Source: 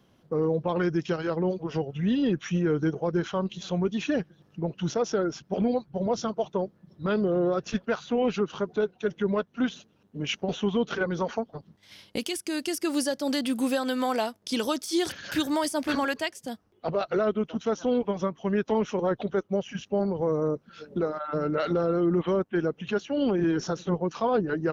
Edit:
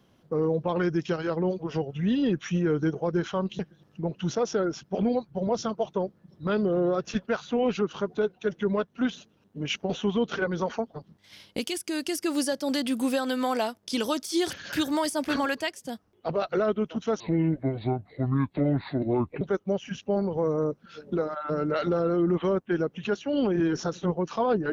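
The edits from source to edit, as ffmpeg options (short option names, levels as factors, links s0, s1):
-filter_complex "[0:a]asplit=4[s0][s1][s2][s3];[s0]atrim=end=3.592[s4];[s1]atrim=start=4.178:end=17.794[s5];[s2]atrim=start=17.79:end=19.25,asetpts=PTS-STARTPTS,asetrate=29106,aresample=44100[s6];[s3]atrim=start=19.246[s7];[s4][s5]acrossfade=d=0.004:c1=hsin:c2=hsin[s8];[s8][s6]acrossfade=d=0.004:c1=hsin:c2=hsin[s9];[s9][s7]acrossfade=d=0.004:c1=hsin:c2=hsin"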